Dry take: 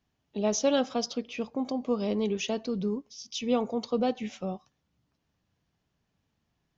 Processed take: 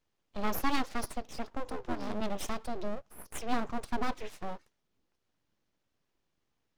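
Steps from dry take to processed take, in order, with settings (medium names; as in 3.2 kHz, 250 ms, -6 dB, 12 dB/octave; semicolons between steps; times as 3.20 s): 1.64–2.20 s: ring modulator 270 Hz -> 100 Hz; full-wave rectifier; trim -2 dB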